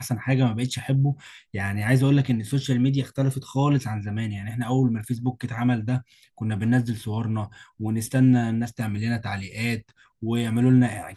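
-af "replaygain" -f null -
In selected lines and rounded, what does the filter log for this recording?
track_gain = +4.9 dB
track_peak = 0.319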